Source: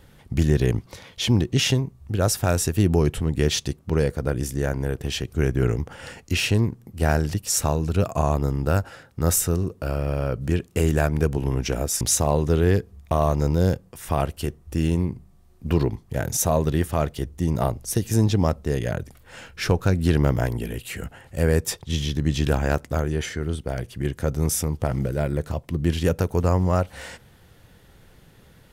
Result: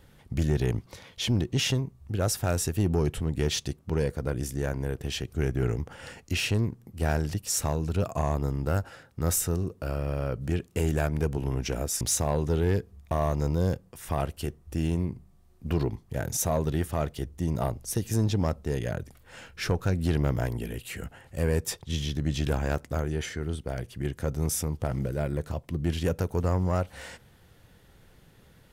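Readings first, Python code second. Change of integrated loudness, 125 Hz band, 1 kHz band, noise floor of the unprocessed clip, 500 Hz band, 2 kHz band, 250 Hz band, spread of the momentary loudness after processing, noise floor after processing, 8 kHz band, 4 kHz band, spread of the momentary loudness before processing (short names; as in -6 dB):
-5.5 dB, -5.5 dB, -6.0 dB, -53 dBFS, -6.0 dB, -5.5 dB, -6.0 dB, 8 LU, -58 dBFS, -5.0 dB, -5.0 dB, 9 LU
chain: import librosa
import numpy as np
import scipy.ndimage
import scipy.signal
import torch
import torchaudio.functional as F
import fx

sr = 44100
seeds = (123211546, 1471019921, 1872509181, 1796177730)

y = 10.0 ** (-11.5 / 20.0) * np.tanh(x / 10.0 ** (-11.5 / 20.0))
y = y * 10.0 ** (-4.5 / 20.0)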